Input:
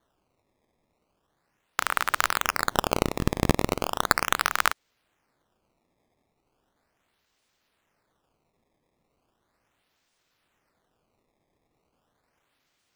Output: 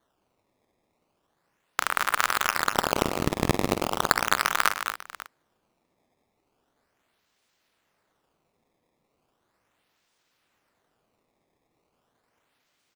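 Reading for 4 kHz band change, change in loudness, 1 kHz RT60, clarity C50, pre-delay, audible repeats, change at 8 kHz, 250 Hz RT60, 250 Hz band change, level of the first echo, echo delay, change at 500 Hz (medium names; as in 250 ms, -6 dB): +1.0 dB, +0.5 dB, no reverb, no reverb, no reverb, 3, +1.0 dB, no reverb, 0.0 dB, -16.5 dB, 48 ms, +0.5 dB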